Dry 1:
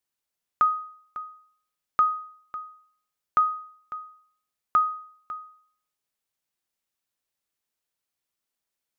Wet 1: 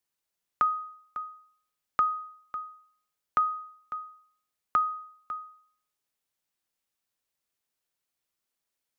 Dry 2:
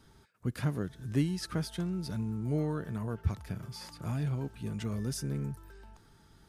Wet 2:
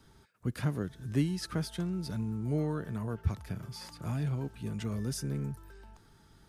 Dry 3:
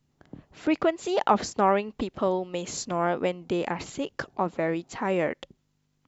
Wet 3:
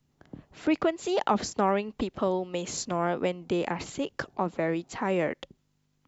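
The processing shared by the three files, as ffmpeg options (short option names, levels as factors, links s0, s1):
-filter_complex "[0:a]acrossover=split=340|3000[s0][s1][s2];[s1]acompressor=threshold=0.0355:ratio=1.5[s3];[s0][s3][s2]amix=inputs=3:normalize=0"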